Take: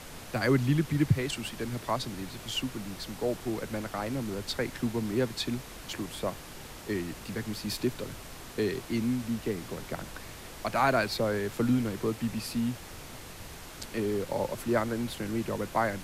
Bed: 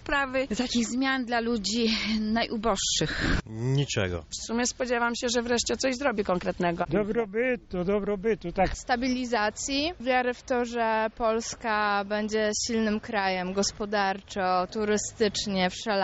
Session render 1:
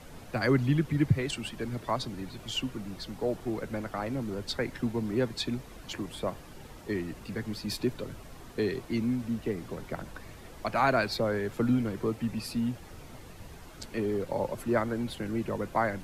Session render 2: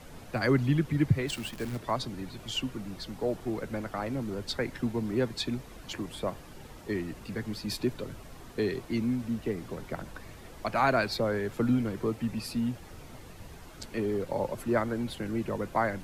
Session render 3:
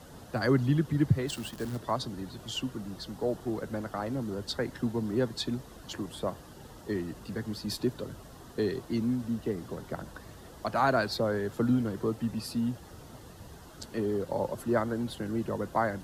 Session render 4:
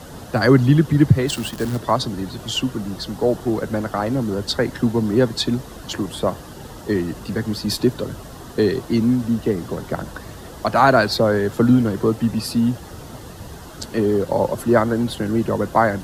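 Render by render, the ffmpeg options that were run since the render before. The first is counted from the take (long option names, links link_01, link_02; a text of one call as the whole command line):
ffmpeg -i in.wav -af "afftdn=noise_reduction=9:noise_floor=-45" out.wav
ffmpeg -i in.wav -filter_complex "[0:a]asplit=3[link_01][link_02][link_03];[link_01]afade=type=out:start_time=1.27:duration=0.02[link_04];[link_02]acrusher=bits=8:dc=4:mix=0:aa=0.000001,afade=type=in:start_time=1.27:duration=0.02,afade=type=out:start_time=1.76:duration=0.02[link_05];[link_03]afade=type=in:start_time=1.76:duration=0.02[link_06];[link_04][link_05][link_06]amix=inputs=3:normalize=0" out.wav
ffmpeg -i in.wav -af "highpass=45,equalizer=frequency=2300:width_type=o:width=0.37:gain=-11.5" out.wav
ffmpeg -i in.wav -af "volume=12dB,alimiter=limit=-1dB:level=0:latency=1" out.wav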